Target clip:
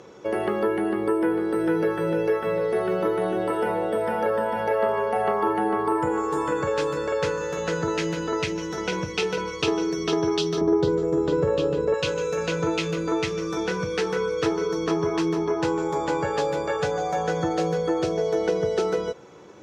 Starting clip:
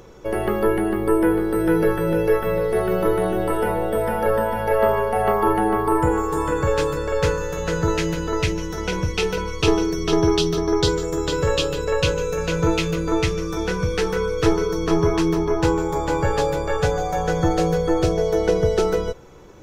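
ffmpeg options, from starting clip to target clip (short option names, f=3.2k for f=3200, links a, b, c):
-filter_complex "[0:a]asettb=1/sr,asplit=3[a][b][c];[a]atrim=end=10.614[d];[b]atrim=start=10.61:end=11.94,asetpts=PTS-STARTPTS,afade=t=in:d=0.004:c=qsin,afade=t=out:st=1.326:d=0.004:c=qsin,tiltshelf=f=1.2k:g=10[e];[c]atrim=start=11.936[f];[d][e]acrossfade=d=0.004:c1=hsin:c2=qsin[g];[g][f]acrossfade=d=0.004:c1=qsin:c2=hsin,acompressor=threshold=-22dB:ratio=2,highpass=170,lowpass=7.4k"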